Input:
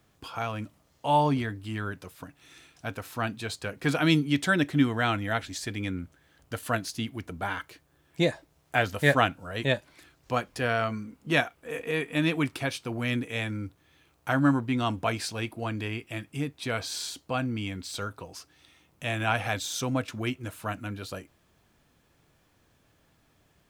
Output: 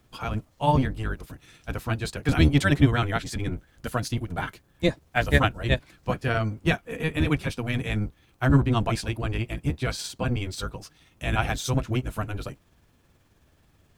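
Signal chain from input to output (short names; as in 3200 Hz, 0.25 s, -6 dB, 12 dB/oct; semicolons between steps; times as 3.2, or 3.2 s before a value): octaver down 1 oct, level +4 dB; granular stretch 0.59×, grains 0.107 s; gain +2 dB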